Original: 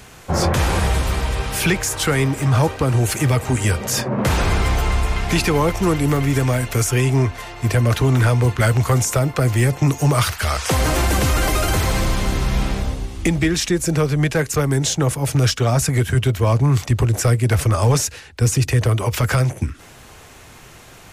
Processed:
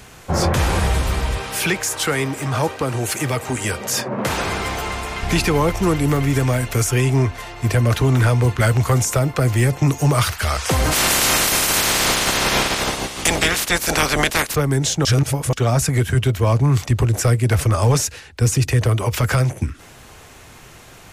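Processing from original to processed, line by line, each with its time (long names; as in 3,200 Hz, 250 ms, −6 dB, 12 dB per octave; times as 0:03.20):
0:01.38–0:05.23: high-pass filter 270 Hz 6 dB per octave
0:10.91–0:14.54: ceiling on every frequency bin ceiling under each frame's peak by 29 dB
0:15.05–0:15.53: reverse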